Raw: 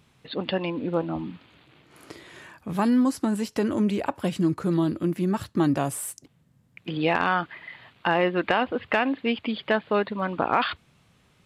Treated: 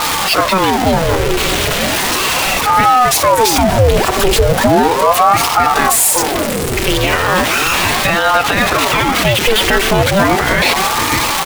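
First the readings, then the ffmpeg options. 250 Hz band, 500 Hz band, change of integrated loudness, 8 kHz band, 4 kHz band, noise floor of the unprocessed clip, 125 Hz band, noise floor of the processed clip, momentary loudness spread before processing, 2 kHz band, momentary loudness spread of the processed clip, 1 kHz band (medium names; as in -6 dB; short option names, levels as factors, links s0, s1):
+6.5 dB, +14.0 dB, +14.0 dB, +25.5 dB, +21.5 dB, -62 dBFS, +13.5 dB, -17 dBFS, 15 LU, +16.5 dB, 4 LU, +17.5 dB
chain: -filter_complex "[0:a]aeval=exprs='val(0)+0.5*0.075*sgn(val(0))':c=same,equalizer=f=390:t=o:w=2.6:g=-4.5,aecho=1:1:5.2:0.49,asplit=2[s0][s1];[s1]adelay=583.1,volume=0.316,highshelf=f=4000:g=-13.1[s2];[s0][s2]amix=inputs=2:normalize=0,alimiter=level_in=6.31:limit=0.891:release=50:level=0:latency=1,aeval=exprs='val(0)*sin(2*PI*620*n/s+620*0.7/0.36*sin(2*PI*0.36*n/s))':c=same"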